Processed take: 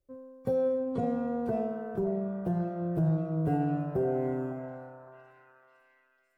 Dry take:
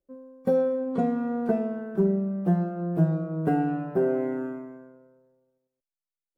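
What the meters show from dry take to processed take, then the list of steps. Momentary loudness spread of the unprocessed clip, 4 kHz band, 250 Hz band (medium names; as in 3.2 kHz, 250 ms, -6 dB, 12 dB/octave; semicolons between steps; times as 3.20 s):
7 LU, no reading, -5.5 dB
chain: dynamic bell 1.5 kHz, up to -6 dB, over -46 dBFS, Q 0.93; peak limiter -20 dBFS, peak gain reduction 7.5 dB; resonant low shelf 150 Hz +7.5 dB, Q 3; repeats whose band climbs or falls 556 ms, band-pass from 850 Hz, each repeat 0.7 oct, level -5 dB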